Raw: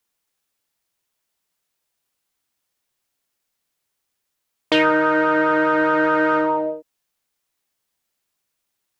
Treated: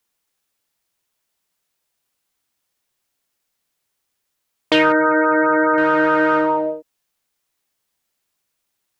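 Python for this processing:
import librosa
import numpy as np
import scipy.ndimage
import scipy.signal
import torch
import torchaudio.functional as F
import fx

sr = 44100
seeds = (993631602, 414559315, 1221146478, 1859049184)

y = fx.spec_gate(x, sr, threshold_db=-20, keep='strong', at=(4.92, 5.78))
y = y * librosa.db_to_amplitude(2.0)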